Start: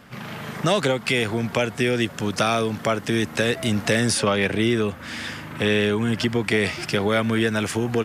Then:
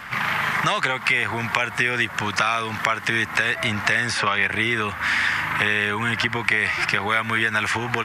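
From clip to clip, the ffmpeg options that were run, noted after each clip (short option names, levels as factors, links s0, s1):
-filter_complex "[0:a]asplit=2[s0][s1];[s1]acompressor=threshold=0.0355:ratio=6,volume=1.33[s2];[s0][s2]amix=inputs=2:normalize=0,equalizer=f=125:t=o:w=1:g=-4,equalizer=f=250:t=o:w=1:g=-7,equalizer=f=500:t=o:w=1:g=-8,equalizer=f=1000:t=o:w=1:g=8,equalizer=f=2000:t=o:w=1:g=10,acrossover=split=2000|7100[s3][s4][s5];[s3]acompressor=threshold=0.0891:ratio=4[s6];[s4]acompressor=threshold=0.0501:ratio=4[s7];[s5]acompressor=threshold=0.00501:ratio=4[s8];[s6][s7][s8]amix=inputs=3:normalize=0"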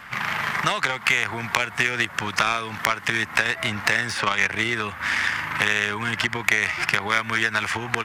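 -af "aeval=exprs='0.891*(cos(1*acos(clip(val(0)/0.891,-1,1)))-cos(1*PI/2))+0.398*(cos(5*acos(clip(val(0)/0.891,-1,1)))-cos(5*PI/2))+0.316*(cos(7*acos(clip(val(0)/0.891,-1,1)))-cos(7*PI/2))':c=same,volume=0.75"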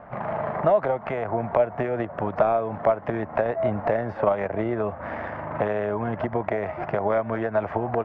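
-af "lowpass=f=630:t=q:w=4.9,volume=1.19"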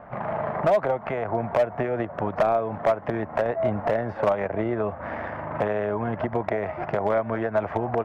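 -af "volume=5.31,asoftclip=hard,volume=0.188"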